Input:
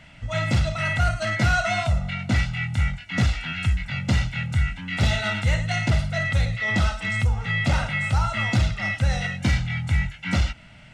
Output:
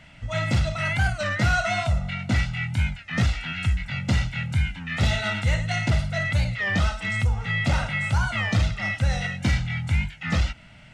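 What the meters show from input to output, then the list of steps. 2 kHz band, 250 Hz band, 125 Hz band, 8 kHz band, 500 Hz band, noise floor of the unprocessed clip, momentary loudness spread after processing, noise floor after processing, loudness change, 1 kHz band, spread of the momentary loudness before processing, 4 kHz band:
−0.5 dB, −1.0 dB, −1.0 dB, −1.0 dB, −1.0 dB, −47 dBFS, 3 LU, −48 dBFS, −1.0 dB, −1.5 dB, 3 LU, −1.0 dB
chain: wow of a warped record 33 1/3 rpm, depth 160 cents
level −1 dB

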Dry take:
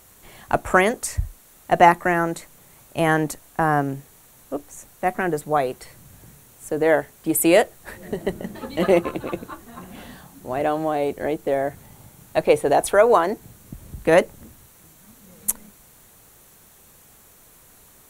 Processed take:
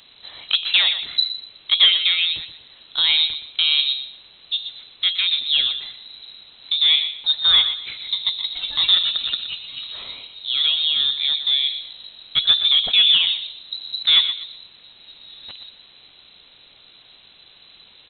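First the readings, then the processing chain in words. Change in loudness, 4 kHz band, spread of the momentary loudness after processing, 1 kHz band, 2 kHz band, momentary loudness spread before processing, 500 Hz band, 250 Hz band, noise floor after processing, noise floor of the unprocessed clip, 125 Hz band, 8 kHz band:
+4.0 dB, +25.5 dB, 17 LU, −19.5 dB, −1.5 dB, 18 LU, below −30 dB, below −25 dB, −50 dBFS, −52 dBFS, below −20 dB, below −40 dB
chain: parametric band 2,200 Hz −5 dB 1 octave
hum removal 56.71 Hz, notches 28
in parallel at +1.5 dB: downward compressor, threshold −28 dBFS, peak gain reduction 17.5 dB
on the sum: soft clipping −5.5 dBFS, distortion −21 dB
on a send: repeating echo 121 ms, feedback 27%, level −11 dB
on the sum: voice inversion scrambler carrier 4,000 Hz

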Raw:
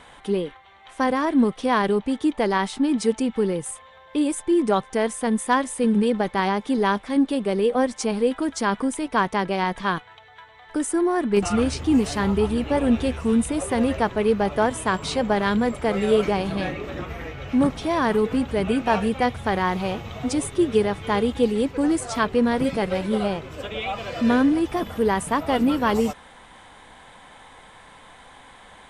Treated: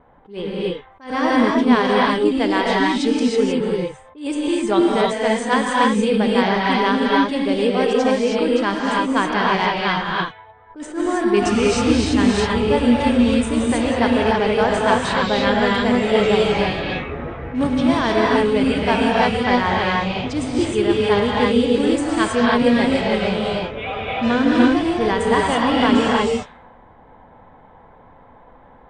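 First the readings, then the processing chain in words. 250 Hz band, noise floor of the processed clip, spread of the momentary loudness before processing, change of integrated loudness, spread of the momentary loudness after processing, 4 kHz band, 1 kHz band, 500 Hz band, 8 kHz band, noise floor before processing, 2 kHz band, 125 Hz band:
+4.0 dB, −47 dBFS, 7 LU, +4.5 dB, 9 LU, +9.0 dB, +5.0 dB, +4.5 dB, 0.0 dB, −48 dBFS, +7.5 dB, +3.5 dB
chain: Chebyshev low-pass filter 9,200 Hz, order 10
low-pass that shuts in the quiet parts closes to 700 Hz, open at −18 dBFS
dynamic equaliser 3,000 Hz, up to +6 dB, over −43 dBFS, Q 1.1
reverb whose tail is shaped and stops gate 340 ms rising, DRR −3.5 dB
level that may rise only so fast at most 170 dB per second

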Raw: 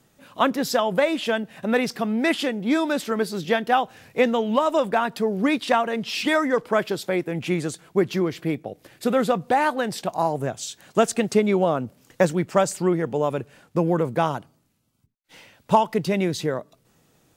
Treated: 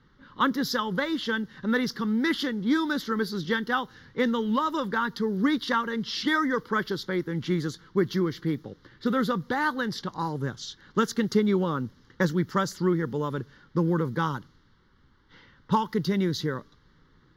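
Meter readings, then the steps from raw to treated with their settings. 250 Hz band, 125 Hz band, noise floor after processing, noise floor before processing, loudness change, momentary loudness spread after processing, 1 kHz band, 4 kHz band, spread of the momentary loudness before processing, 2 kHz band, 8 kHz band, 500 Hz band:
−2.0 dB, −0.5 dB, −61 dBFS, −64 dBFS, −4.0 dB, 7 LU, −6.0 dB, −2.0 dB, 7 LU, −2.0 dB, −8.5 dB, −8.0 dB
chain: background noise pink −59 dBFS
phaser with its sweep stopped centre 2,500 Hz, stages 6
low-pass that shuts in the quiet parts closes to 2,700 Hz, open at −24 dBFS

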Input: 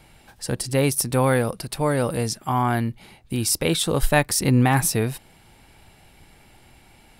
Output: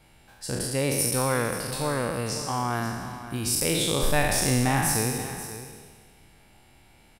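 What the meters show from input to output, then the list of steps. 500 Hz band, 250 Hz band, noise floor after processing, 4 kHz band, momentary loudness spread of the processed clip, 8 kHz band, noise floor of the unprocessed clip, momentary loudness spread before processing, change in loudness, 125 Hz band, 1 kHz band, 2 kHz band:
−4.5 dB, −5.5 dB, −57 dBFS, −1.5 dB, 12 LU, −1.0 dB, −53 dBFS, 10 LU, −4.0 dB, −6.0 dB, −4.0 dB, −2.5 dB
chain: peak hold with a decay on every bin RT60 1.55 s
single-tap delay 534 ms −13 dB
level −7.5 dB

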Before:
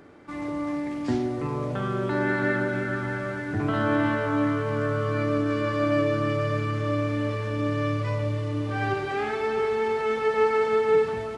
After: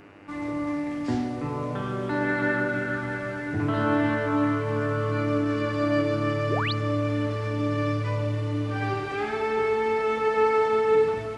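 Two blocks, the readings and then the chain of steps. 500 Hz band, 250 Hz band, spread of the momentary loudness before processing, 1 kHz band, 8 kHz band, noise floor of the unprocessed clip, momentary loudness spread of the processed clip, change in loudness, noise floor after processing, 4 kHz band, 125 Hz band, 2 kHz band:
−0.5 dB, +0.5 dB, 7 LU, +0.5 dB, can't be measured, −32 dBFS, 8 LU, 0.0 dB, −32 dBFS, +1.5 dB, 0.0 dB, +0.5 dB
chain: feedback delay network reverb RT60 0.96 s, low-frequency decay 1.05×, high-frequency decay 0.9×, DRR 5.5 dB
sound drawn into the spectrogram rise, 0:06.49–0:06.73, 260–5,000 Hz −28 dBFS
hum with harmonics 100 Hz, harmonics 29, −53 dBFS −2 dB per octave
level −1.5 dB

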